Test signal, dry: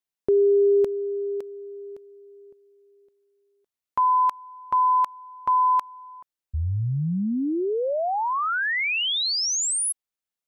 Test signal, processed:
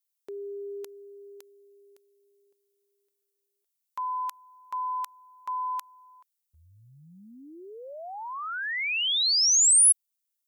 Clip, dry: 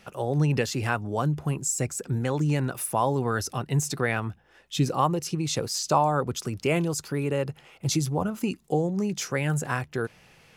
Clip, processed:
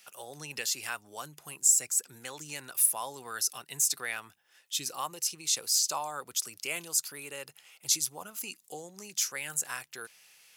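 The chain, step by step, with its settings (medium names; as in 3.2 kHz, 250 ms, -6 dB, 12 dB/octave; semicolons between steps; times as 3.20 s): differentiator; trim +5.5 dB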